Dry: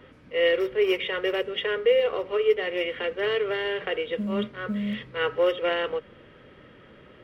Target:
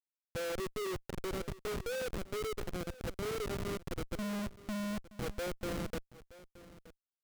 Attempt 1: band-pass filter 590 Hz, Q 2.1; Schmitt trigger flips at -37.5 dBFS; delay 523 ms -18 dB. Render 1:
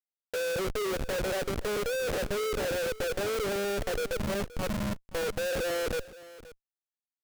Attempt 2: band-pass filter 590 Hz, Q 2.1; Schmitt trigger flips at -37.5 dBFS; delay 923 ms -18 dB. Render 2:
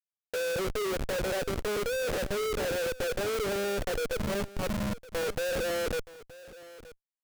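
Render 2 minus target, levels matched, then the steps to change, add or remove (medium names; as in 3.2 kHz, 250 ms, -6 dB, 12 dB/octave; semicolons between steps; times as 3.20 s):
250 Hz band -5.0 dB
change: band-pass filter 200 Hz, Q 2.1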